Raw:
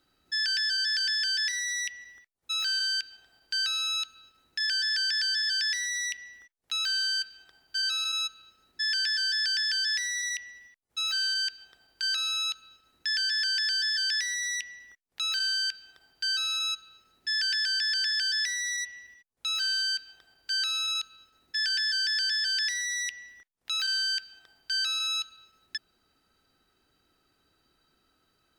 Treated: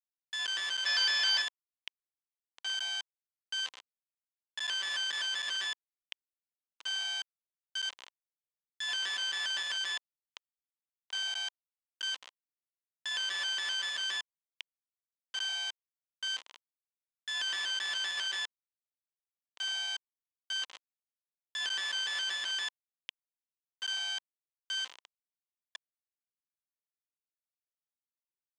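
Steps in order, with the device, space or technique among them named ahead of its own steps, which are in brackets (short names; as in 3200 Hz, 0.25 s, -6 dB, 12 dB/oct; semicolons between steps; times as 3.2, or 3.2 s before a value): 0.86–1.42 high shelf 2500 Hz +6.5 dB; hand-held game console (bit-crush 4-bit; speaker cabinet 480–6000 Hz, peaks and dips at 1000 Hz +6 dB, 2000 Hz +3 dB, 3100 Hz +8 dB, 5300 Hz -5 dB); gain -6 dB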